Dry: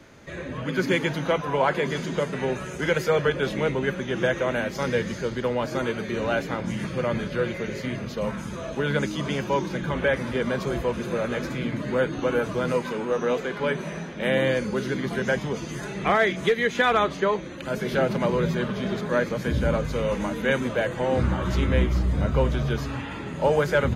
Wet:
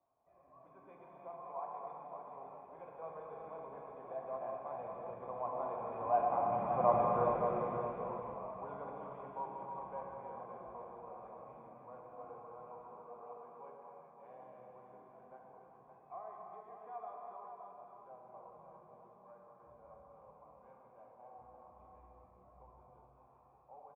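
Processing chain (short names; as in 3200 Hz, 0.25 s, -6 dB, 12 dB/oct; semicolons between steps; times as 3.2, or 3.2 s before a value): Doppler pass-by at 6.92, 10 m/s, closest 3.7 m; vocal tract filter a; echo 0.567 s -7 dB; non-linear reverb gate 0.45 s flat, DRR -1.5 dB; gain +10.5 dB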